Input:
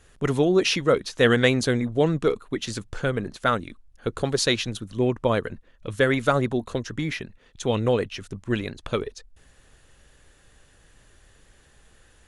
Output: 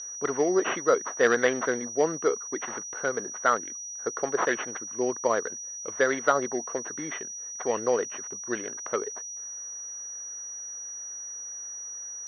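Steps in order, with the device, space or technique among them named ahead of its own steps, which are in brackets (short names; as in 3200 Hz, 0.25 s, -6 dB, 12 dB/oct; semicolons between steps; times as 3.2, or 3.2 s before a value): toy sound module (decimation joined by straight lines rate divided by 8×; pulse-width modulation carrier 5800 Hz; speaker cabinet 520–4400 Hz, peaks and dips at 570 Hz -3 dB, 850 Hz -3 dB, 2400 Hz -9 dB); gain +3 dB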